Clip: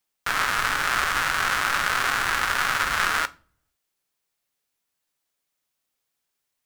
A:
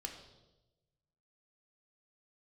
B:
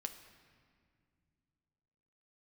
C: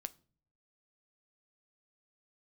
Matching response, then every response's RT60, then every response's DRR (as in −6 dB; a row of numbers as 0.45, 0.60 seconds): C; 1.0, 2.1, 0.45 seconds; 2.0, 5.0, 12.5 decibels